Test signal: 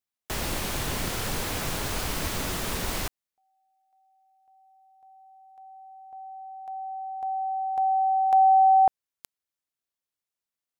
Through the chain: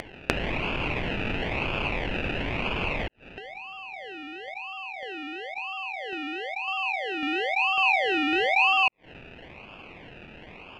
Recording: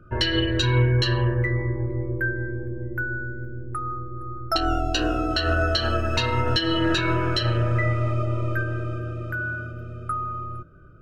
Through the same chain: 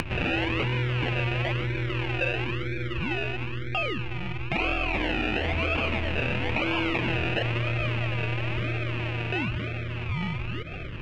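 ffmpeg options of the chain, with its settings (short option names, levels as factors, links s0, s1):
-filter_complex "[0:a]asplit=2[s0][s1];[s1]asoftclip=type=tanh:threshold=0.119,volume=0.596[s2];[s0][s2]amix=inputs=2:normalize=0,acrusher=samples=32:mix=1:aa=0.000001:lfo=1:lforange=19.2:lforate=1,acompressor=threshold=0.0708:ratio=6:attack=2.5:release=54:knee=6:detection=peak,lowpass=f=2600:t=q:w=6.7,acompressor=mode=upward:threshold=0.0447:ratio=4:attack=14:release=98:knee=2.83:detection=peak,volume=0.75"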